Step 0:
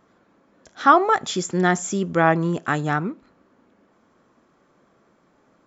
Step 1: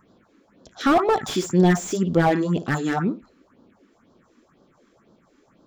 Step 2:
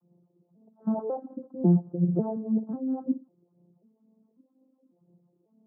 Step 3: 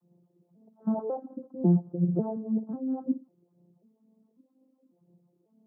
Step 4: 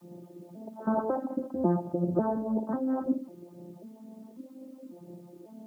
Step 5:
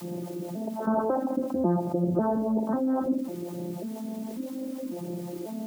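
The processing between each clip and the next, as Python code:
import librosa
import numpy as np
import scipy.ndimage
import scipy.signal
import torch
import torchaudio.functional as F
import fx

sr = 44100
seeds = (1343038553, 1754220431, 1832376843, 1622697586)

y1 = fx.room_flutter(x, sr, wall_m=9.7, rt60_s=0.24)
y1 = fx.phaser_stages(y1, sr, stages=4, low_hz=110.0, high_hz=2100.0, hz=2.0, feedback_pct=30)
y1 = fx.slew_limit(y1, sr, full_power_hz=94.0)
y1 = y1 * 10.0 ** (4.0 / 20.0)
y2 = fx.vocoder_arp(y1, sr, chord='major triad', root=53, every_ms=545)
y2 = scipy.signal.sosfilt(scipy.signal.bessel(8, 550.0, 'lowpass', norm='mag', fs=sr, output='sos'), y2)
y2 = y2 * 10.0 ** (-5.0 / 20.0)
y3 = fx.rider(y2, sr, range_db=10, speed_s=2.0)
y3 = y3 * 10.0 ** (-2.0 / 20.0)
y4 = y3 + 0.53 * np.pad(y3, (int(3.3 * sr / 1000.0), 0))[:len(y3)]
y4 = fx.spectral_comp(y4, sr, ratio=2.0)
y5 = fx.dmg_noise_colour(y4, sr, seeds[0], colour='white', level_db=-68.0)
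y5 = fx.env_flatten(y5, sr, amount_pct=50)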